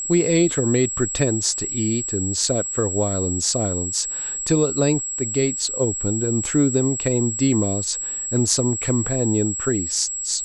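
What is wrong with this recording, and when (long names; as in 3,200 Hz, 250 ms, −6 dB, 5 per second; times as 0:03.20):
whistle 7,700 Hz −25 dBFS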